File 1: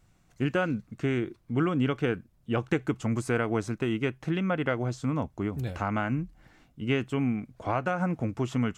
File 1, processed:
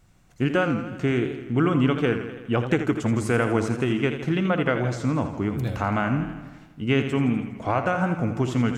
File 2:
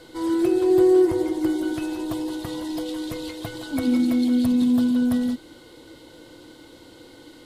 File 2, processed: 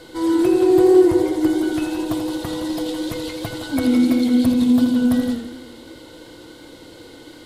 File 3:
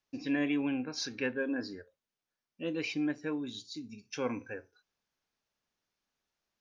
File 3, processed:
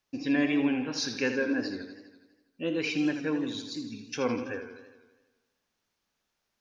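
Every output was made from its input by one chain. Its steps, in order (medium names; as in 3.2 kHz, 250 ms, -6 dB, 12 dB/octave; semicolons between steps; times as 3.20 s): on a send: flutter echo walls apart 10 m, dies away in 0.22 s; on the sum: modulated delay 82 ms, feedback 64%, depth 102 cents, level -9.5 dB; trim +4.5 dB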